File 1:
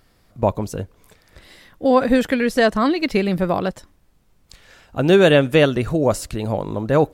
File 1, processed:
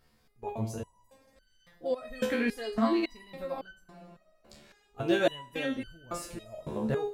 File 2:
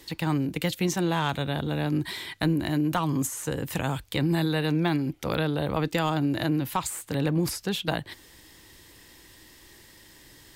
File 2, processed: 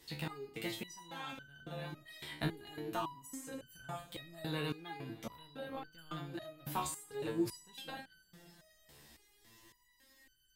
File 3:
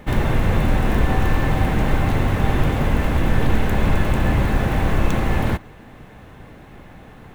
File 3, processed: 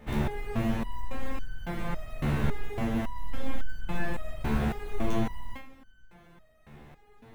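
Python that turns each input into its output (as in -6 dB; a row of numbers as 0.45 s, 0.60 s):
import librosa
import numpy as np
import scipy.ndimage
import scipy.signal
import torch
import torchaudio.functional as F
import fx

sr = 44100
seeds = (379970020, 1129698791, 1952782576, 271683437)

y = fx.rev_double_slope(x, sr, seeds[0], early_s=0.34, late_s=3.5, knee_db=-18, drr_db=7.0)
y = fx.resonator_held(y, sr, hz=3.6, low_hz=73.0, high_hz=1500.0)
y = y * librosa.db_to_amplitude(-1.0)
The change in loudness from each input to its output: -14.5 LU, -15.5 LU, -13.0 LU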